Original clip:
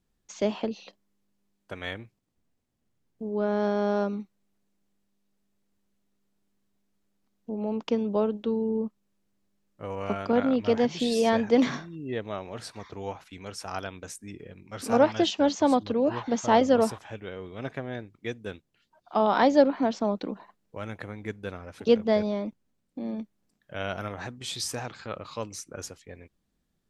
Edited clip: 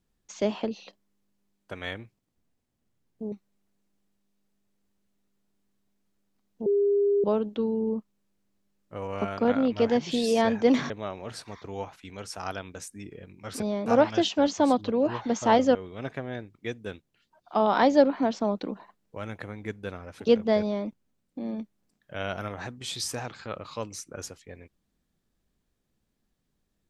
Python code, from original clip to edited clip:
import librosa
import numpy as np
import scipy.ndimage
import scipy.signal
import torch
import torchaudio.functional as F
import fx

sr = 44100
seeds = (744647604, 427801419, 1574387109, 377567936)

y = fx.edit(x, sr, fx.cut(start_s=3.32, length_s=0.88),
    fx.bleep(start_s=7.54, length_s=0.58, hz=404.0, db=-19.5),
    fx.cut(start_s=11.78, length_s=0.4),
    fx.cut(start_s=16.77, length_s=0.58),
    fx.duplicate(start_s=22.2, length_s=0.26, to_s=14.88), tone=tone)